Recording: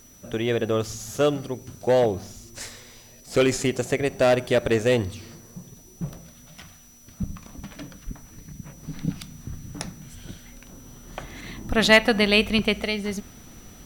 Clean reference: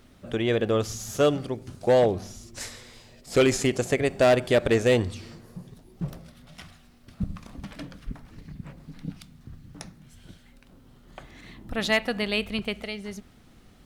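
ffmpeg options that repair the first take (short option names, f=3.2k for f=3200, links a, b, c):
-af "bandreject=f=5.9k:w=30,agate=range=-21dB:threshold=-40dB,asetnsamples=n=441:p=0,asendcmd='8.83 volume volume -8dB',volume=0dB"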